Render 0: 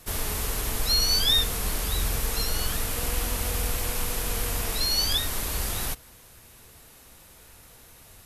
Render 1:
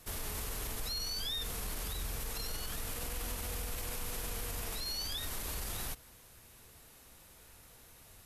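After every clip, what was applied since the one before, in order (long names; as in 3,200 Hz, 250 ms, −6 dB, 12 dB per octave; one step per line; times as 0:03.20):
brickwall limiter −23 dBFS, peak gain reduction 11.5 dB
level −6.5 dB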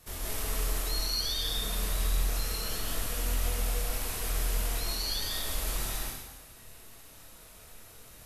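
multi-voice chorus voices 2, 0.91 Hz, delay 26 ms, depth 2 ms
comb and all-pass reverb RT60 1.1 s, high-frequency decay 1×, pre-delay 95 ms, DRR −3.5 dB
level +3.5 dB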